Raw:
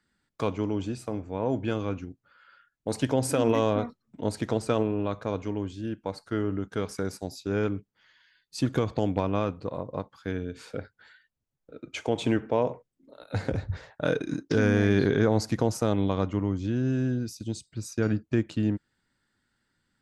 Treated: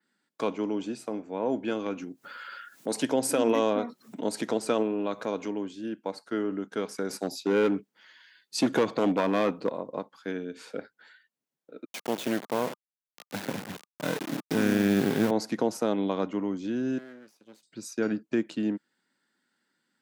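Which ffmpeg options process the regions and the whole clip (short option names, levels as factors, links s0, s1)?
-filter_complex "[0:a]asettb=1/sr,asplit=3[s0][s1][s2];[s0]atrim=end=1.864[s3];[s1]atrim=start=1.86:end=5.51,asetpts=PTS-STARTPTS,afade=t=in:d=0.004:c=qsin,afade=t=out:st=3.646:d=0.004:c=qsin,highshelf=f=5500:g=6.5,acompressor=mode=upward:threshold=0.0447:ratio=2.5:attack=3.2:release=140:knee=2.83:detection=peak[s4];[s2]atrim=start=5.506[s5];[s3][s4]acrossfade=d=0.004:c1=hsin:c2=qsin[s6];[s6][s5]acrossfade=d=0.004:c1=qsin:c2=hsin,asettb=1/sr,asplit=3[s7][s8][s9];[s7]atrim=end=7.094[s10];[s8]atrim=start=7.09:end=9.72,asetpts=PTS-STARTPTS,afade=t=in:d=0.004:c=qsin,afade=t=out:st=2.626:d=0.004:c=qsin,acontrast=64,asoftclip=type=hard:threshold=0.15[s11];[s9]atrim=start=9.716[s12];[s10][s11]acrossfade=d=0.004:c1=hsin:c2=qsin[s13];[s13][s12]acrossfade=d=0.004:c1=qsin:c2=hsin,asettb=1/sr,asplit=3[s14][s15][s16];[s14]atrim=end=11.854[s17];[s15]atrim=start=11.85:end=15.31,asetpts=PTS-STARTPTS,afade=t=in:d=0.004:c=qsin,afade=t=out:st=3.456:d=0.004:c=qsin,aeval=exprs='if(lt(val(0),0),0.251*val(0),val(0))':c=same,asubboost=boost=5.5:cutoff=220,acrusher=bits=3:dc=4:mix=0:aa=0.000001[s18];[s16]atrim=start=15.306[s19];[s17][s18]acrossfade=d=0.004:c1=hsin:c2=qsin[s20];[s20][s19]acrossfade=d=0.004:c1=qsin:c2=hsin,asettb=1/sr,asplit=3[s21][s22][s23];[s21]atrim=end=16.984[s24];[s22]atrim=start=16.98:end=17.63,asetpts=PTS-STARTPTS,afade=t=in:d=0.004:c=qsin,afade=t=out:st=0.646:d=0.004:c=qsin,acrossover=split=570 2300:gain=0.126 1 0.112[s25][s26][s27];[s25][s26][s27]amix=inputs=3:normalize=0,aeval=exprs='max(val(0),0)':c=same,asplit=2[s28][s29];[s29]adelay=28,volume=0.211[s30];[s28][s30]amix=inputs=2:normalize=0,atrim=end_sample=28665[s31];[s23]atrim=start=17.626[s32];[s24][s31]acrossfade=d=0.004:c1=hsin:c2=qsin[s33];[s33][s32]acrossfade=d=0.004:c1=qsin:c2=hsin,highpass=f=200:w=0.5412,highpass=f=200:w=1.3066,bandreject=f=1200:w=23,adynamicequalizer=threshold=0.00316:dfrequency=7200:dqfactor=0.87:tfrequency=7200:tqfactor=0.87:attack=5:release=100:ratio=0.375:range=2:mode=cutabove:tftype=bell"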